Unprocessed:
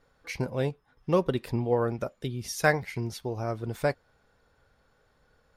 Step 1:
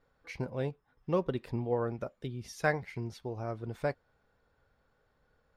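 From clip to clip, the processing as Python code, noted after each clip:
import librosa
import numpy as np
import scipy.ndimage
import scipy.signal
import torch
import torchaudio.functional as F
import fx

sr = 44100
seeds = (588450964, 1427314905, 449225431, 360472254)

y = fx.lowpass(x, sr, hz=3200.0, slope=6)
y = y * librosa.db_to_amplitude(-5.5)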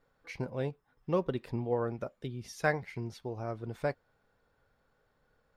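y = fx.peak_eq(x, sr, hz=62.0, db=-6.0, octaves=0.75)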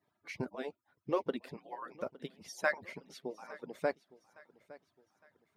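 y = fx.hpss_only(x, sr, part='percussive')
y = scipy.signal.sosfilt(scipy.signal.butter(4, 97.0, 'highpass', fs=sr, output='sos'), y)
y = fx.echo_feedback(y, sr, ms=861, feedback_pct=41, wet_db=-20.0)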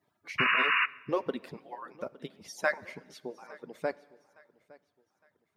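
y = fx.rider(x, sr, range_db=5, speed_s=2.0)
y = fx.spec_paint(y, sr, seeds[0], shape='noise', start_s=0.38, length_s=0.48, low_hz=980.0, high_hz=2900.0, level_db=-26.0)
y = fx.rev_plate(y, sr, seeds[1], rt60_s=1.4, hf_ratio=1.0, predelay_ms=0, drr_db=20.0)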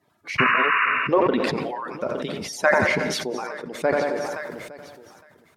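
y = fx.env_lowpass_down(x, sr, base_hz=1700.0, full_db=-25.0)
y = fx.echo_feedback(y, sr, ms=88, feedback_pct=56, wet_db=-18)
y = fx.sustainer(y, sr, db_per_s=24.0)
y = y * librosa.db_to_amplitude(9.0)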